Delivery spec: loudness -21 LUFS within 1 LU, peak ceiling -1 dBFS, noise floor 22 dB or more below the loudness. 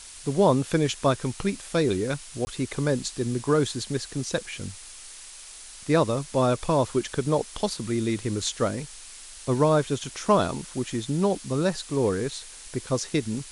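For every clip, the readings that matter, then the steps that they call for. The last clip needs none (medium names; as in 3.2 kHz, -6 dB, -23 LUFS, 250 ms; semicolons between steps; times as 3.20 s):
dropouts 1; longest dropout 20 ms; noise floor -44 dBFS; noise floor target -48 dBFS; loudness -26.0 LUFS; peak level -9.0 dBFS; loudness target -21.0 LUFS
-> interpolate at 2.45 s, 20 ms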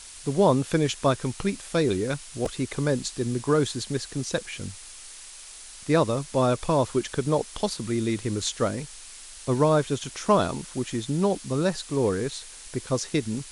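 dropouts 0; noise floor -44 dBFS; noise floor target -48 dBFS
-> noise reduction 6 dB, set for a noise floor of -44 dBFS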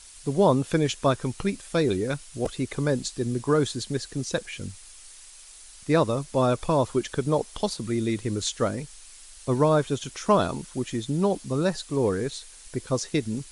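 noise floor -48 dBFS; loudness -26.0 LUFS; peak level -9.0 dBFS; loudness target -21.0 LUFS
-> trim +5 dB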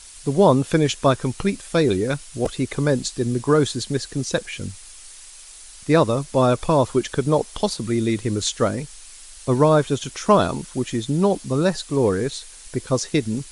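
loudness -21.0 LUFS; peak level -4.0 dBFS; noise floor -43 dBFS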